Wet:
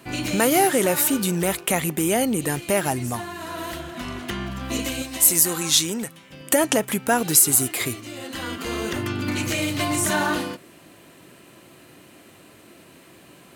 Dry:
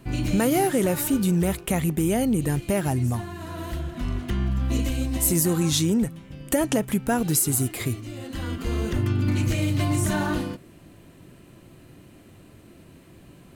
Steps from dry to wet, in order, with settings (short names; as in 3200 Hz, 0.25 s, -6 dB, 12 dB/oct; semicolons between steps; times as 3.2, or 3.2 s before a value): HPF 620 Hz 6 dB/oct, from 5.02 s 1300 Hz, from 6.32 s 620 Hz; gain +7.5 dB